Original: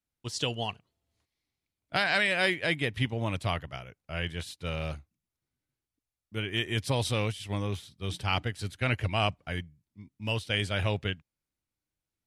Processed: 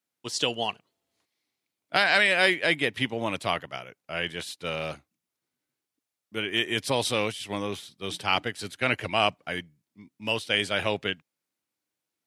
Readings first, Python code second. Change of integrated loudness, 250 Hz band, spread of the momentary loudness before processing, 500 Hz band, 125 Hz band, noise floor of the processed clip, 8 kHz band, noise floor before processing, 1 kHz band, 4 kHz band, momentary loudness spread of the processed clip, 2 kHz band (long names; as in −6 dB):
+4.0 dB, +2.0 dB, 12 LU, +5.0 dB, −7.5 dB, below −85 dBFS, +5.0 dB, below −85 dBFS, +5.0 dB, +5.0 dB, 14 LU, +5.0 dB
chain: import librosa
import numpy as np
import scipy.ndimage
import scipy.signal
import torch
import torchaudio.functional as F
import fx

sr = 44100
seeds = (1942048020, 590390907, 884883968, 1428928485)

y = scipy.signal.sosfilt(scipy.signal.butter(2, 240.0, 'highpass', fs=sr, output='sos'), x)
y = y * 10.0 ** (5.0 / 20.0)